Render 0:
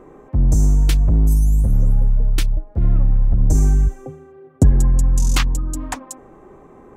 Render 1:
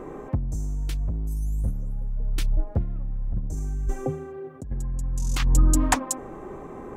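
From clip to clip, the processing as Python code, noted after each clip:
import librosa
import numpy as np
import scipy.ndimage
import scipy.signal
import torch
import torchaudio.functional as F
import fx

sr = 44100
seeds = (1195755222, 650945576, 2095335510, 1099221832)

y = fx.over_compress(x, sr, threshold_db=-19.0, ratio=-0.5)
y = y * 10.0 ** (-2.0 / 20.0)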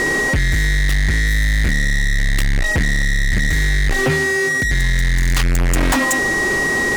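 y = x + 10.0 ** (-31.0 / 20.0) * np.sin(2.0 * np.pi * 1900.0 * np.arange(len(x)) / sr)
y = fx.fuzz(y, sr, gain_db=32.0, gate_db=-41.0)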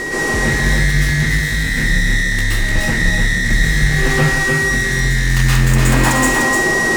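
y = x + 10.0 ** (-4.5 / 20.0) * np.pad(x, (int(300 * sr / 1000.0), 0))[:len(x)]
y = fx.rev_plate(y, sr, seeds[0], rt60_s=0.56, hf_ratio=0.85, predelay_ms=110, drr_db=-7.0)
y = y * 10.0 ** (-5.0 / 20.0)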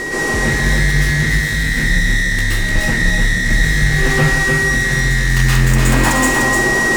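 y = x + 10.0 ** (-13.0 / 20.0) * np.pad(x, (int(709 * sr / 1000.0), 0))[:len(x)]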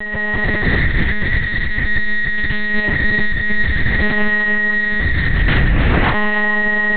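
y = fx.lpc_monotone(x, sr, seeds[1], pitch_hz=210.0, order=8)
y = y * 10.0 ** (-1.0 / 20.0)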